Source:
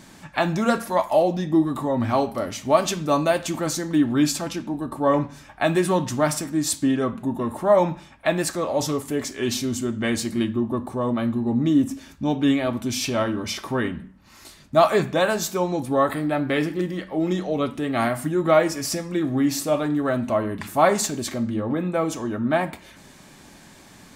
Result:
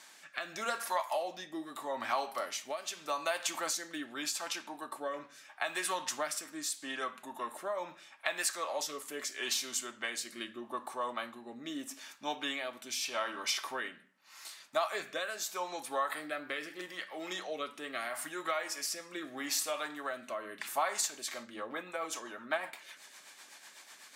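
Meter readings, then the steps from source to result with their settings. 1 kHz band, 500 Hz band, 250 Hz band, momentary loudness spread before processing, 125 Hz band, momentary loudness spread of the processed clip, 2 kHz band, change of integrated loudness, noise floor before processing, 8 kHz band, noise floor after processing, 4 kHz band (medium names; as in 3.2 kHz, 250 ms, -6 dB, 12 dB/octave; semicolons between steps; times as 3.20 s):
-11.5 dB, -17.5 dB, -24.5 dB, 7 LU, -35.5 dB, 10 LU, -7.5 dB, -14.0 dB, -48 dBFS, -6.5 dB, -58 dBFS, -6.0 dB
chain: high-pass 1 kHz 12 dB/octave; compression 6:1, threshold -28 dBFS, peak gain reduction 11.5 dB; rotary cabinet horn 0.8 Hz, later 8 Hz, at 20.97 s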